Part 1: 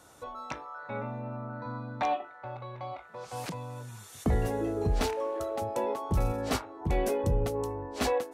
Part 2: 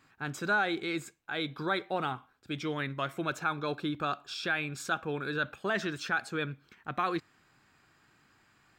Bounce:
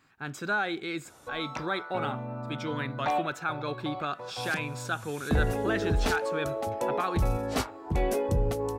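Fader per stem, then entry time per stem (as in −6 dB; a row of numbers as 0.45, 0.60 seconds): +1.0, −0.5 decibels; 1.05, 0.00 seconds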